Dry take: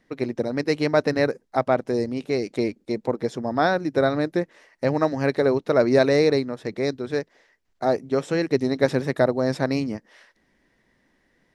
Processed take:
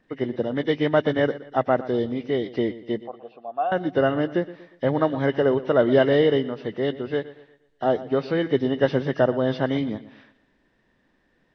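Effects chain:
hearing-aid frequency compression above 1,600 Hz 1.5 to 1
0:03.03–0:03.72: formant filter a
bucket-brigade delay 119 ms, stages 4,096, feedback 40%, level −16.5 dB

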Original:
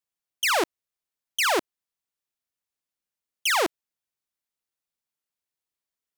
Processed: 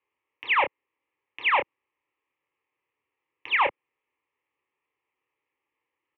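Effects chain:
leveller curve on the samples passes 3
sine wavefolder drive 14 dB, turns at −16.5 dBFS
single-sideband voice off tune −110 Hz 250–2,700 Hz
phaser with its sweep stopped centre 1,000 Hz, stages 8
double-tracking delay 27 ms −7.5 dB
level +4 dB

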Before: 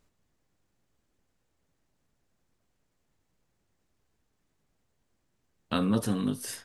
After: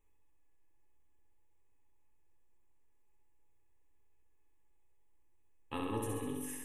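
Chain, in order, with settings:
parametric band 3,700 Hz −5.5 dB 0.9 octaves
phaser with its sweep stopped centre 960 Hz, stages 8
tuned comb filter 850 Hz, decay 0.15 s, harmonics all, mix 80%
flutter between parallel walls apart 11.4 metres, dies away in 1.1 s
convolution reverb RT60 0.25 s, pre-delay 104 ms, DRR 13.5 dB
level +6.5 dB

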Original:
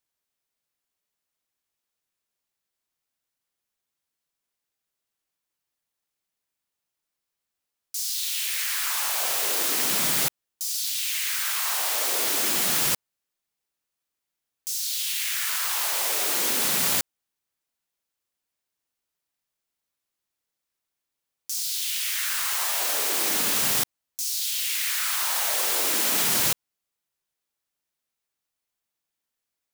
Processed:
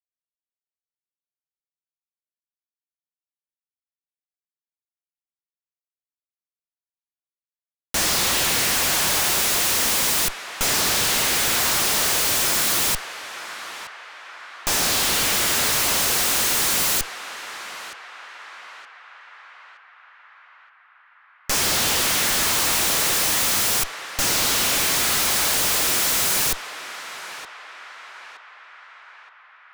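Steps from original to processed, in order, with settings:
bass and treble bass −1 dB, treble +10 dB
comparator with hysteresis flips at −21 dBFS
feedback echo with a band-pass in the loop 921 ms, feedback 64%, band-pass 1,400 Hz, level −8 dB

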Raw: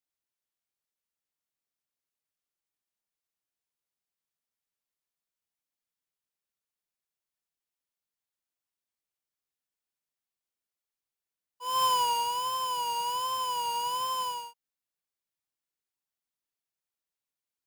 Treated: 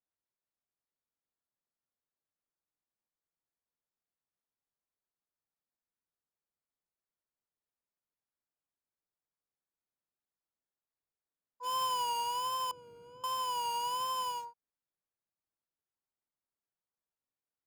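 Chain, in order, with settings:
adaptive Wiener filter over 15 samples
downward compressor 3 to 1, threshold −34 dBFS, peak gain reduction 8 dB
0:12.71–0:13.24: moving average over 48 samples

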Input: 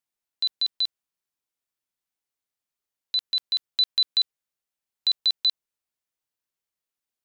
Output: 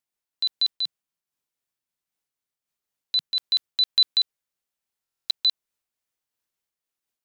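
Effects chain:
0:00.84–0:03.36: parametric band 160 Hz +4 dB 0.75 octaves
buffer that repeats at 0:05.02, samples 1,024, times 11
amplitude modulation by smooth noise, depth 60%
level +4.5 dB

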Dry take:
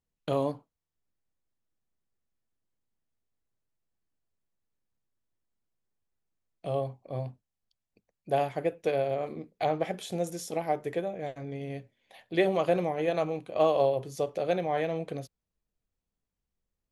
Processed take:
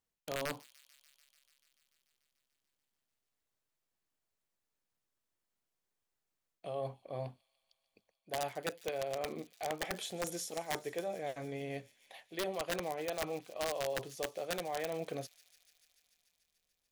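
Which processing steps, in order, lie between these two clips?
low-shelf EQ 300 Hz −11.5 dB
reversed playback
downward compressor 4 to 1, threshold −39 dBFS, peak gain reduction 15 dB
reversed playback
wrap-around overflow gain 31 dB
delay with a high-pass on its return 146 ms, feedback 80%, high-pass 3,500 Hz, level −16 dB
level +3 dB

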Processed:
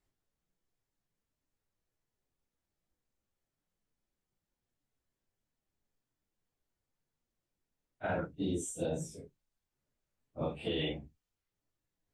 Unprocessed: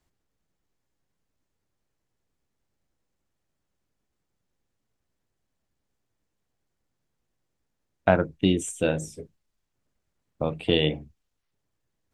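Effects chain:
random phases in long frames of 100 ms
0:08.35–0:09.01: flat-topped bell 1,800 Hz −12 dB
brickwall limiter −18.5 dBFS, peak gain reduction 9.5 dB
level −7 dB

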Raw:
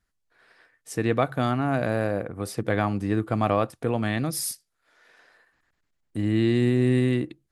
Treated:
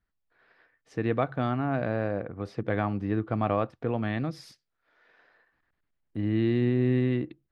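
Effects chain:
high-frequency loss of the air 230 metres
level −3 dB

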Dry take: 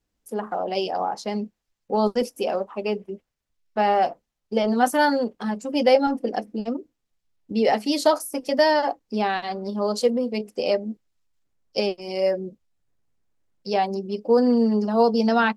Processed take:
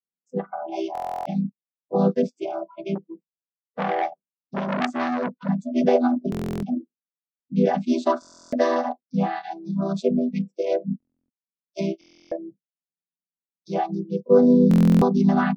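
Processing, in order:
channel vocoder with a chord as carrier minor triad, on E3
noise reduction from a noise print of the clip's start 25 dB
buffer that repeats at 0:00.93/0:06.30/0:08.20/0:10.98/0:11.99/0:14.69, samples 1,024, times 13
0:02.95–0:05.49: saturating transformer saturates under 2,400 Hz
level +1.5 dB

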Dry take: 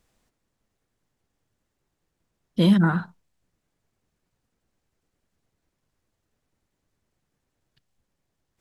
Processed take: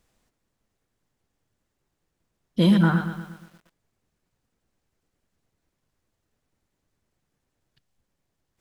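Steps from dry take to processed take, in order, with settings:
feedback echo at a low word length 119 ms, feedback 55%, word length 8 bits, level −10 dB

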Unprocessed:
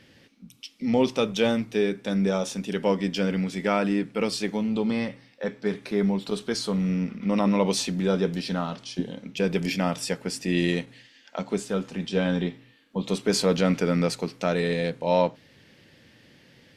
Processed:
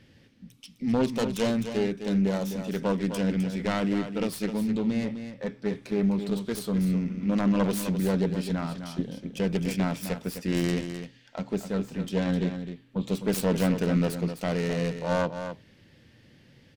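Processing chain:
phase distortion by the signal itself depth 0.3 ms
low-shelf EQ 190 Hz +11 dB
single-tap delay 257 ms −9 dB
level −5.5 dB

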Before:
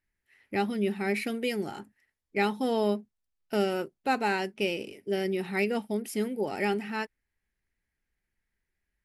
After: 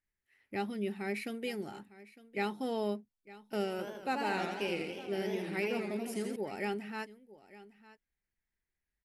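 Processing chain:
single-tap delay 906 ms −18.5 dB
0:03.70–0:06.36: feedback echo with a swinging delay time 82 ms, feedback 67%, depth 168 cents, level −4.5 dB
level −7.5 dB

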